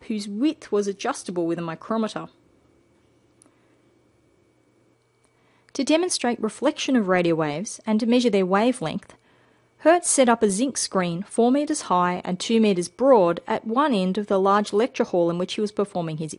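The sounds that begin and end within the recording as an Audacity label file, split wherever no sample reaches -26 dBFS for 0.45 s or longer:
5.750000	8.980000	sound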